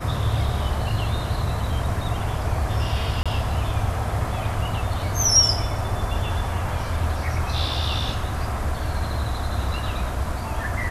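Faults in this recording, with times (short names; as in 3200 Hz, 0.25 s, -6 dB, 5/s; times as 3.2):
3.23–3.26 gap 26 ms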